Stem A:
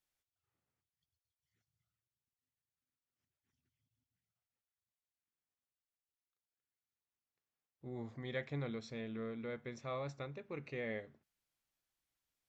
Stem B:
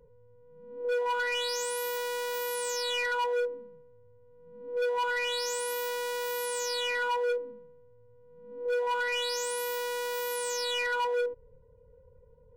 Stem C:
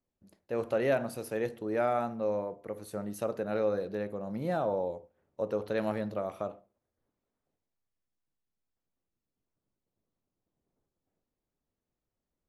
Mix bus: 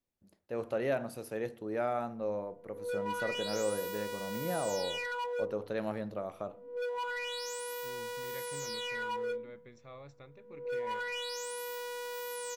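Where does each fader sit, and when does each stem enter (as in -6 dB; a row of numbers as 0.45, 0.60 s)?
-8.5, -7.0, -4.0 dB; 0.00, 2.00, 0.00 s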